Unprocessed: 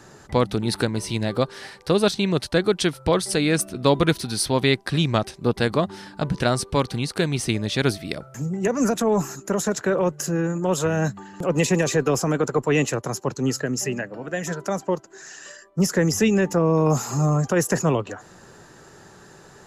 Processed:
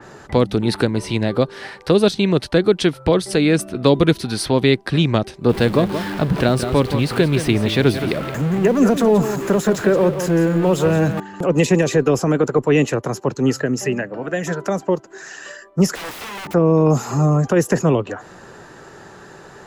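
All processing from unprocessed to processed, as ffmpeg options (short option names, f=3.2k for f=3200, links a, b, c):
-filter_complex "[0:a]asettb=1/sr,asplit=3[a][b][c];[a]atrim=end=5.494[d];[b]atrim=start=5.49:end=11.2,asetpts=PTS-STARTPTS,afade=t=in:d=0.004:c=qsin,afade=t=out:st=5.706:d=0.004:c=qsin,aeval=exprs='val(0)+0.5*0.0376*sgn(val(0))':c=same,equalizer=f=6.2k:w=1.8:g=-4,aecho=1:1:172:0.299,atrim=end_sample=251811[e];[c]atrim=start=11.196[f];[d][e]acrossfade=d=0.004:c1=hsin:c2=qsin[g];[g][f]acrossfade=d=0.004:c1=qsin:c2=hsin,asettb=1/sr,asplit=3[h][i][j];[h]atrim=end=15.954[k];[i]atrim=start=15.95:end=16.54,asetpts=PTS-STARTPTS,afade=t=in:d=0.004:c=qsin,afade=t=out:st=0.586:d=0.004:c=qsin,acompressor=threshold=-25dB:ratio=5:attack=3.2:release=140:knee=1:detection=peak,aeval=exprs='(mod(35.5*val(0)+1,2)-1)/35.5':c=same[l];[j]atrim=start=16.536[m];[k][l]acrossfade=d=0.004:c1=hsin:c2=qsin[n];[n][m]acrossfade=d=0.004:c1=qsin:c2=hsin,bass=f=250:g=-4,treble=f=4k:g=-8,acrossover=split=500|3000[o][p][q];[p]acompressor=threshold=-35dB:ratio=2.5[r];[o][r][q]amix=inputs=3:normalize=0,adynamicequalizer=threshold=0.00562:dfrequency=3600:dqfactor=0.7:tfrequency=3600:tqfactor=0.7:attack=5:release=100:ratio=0.375:range=2:mode=cutabove:tftype=highshelf,volume=8dB"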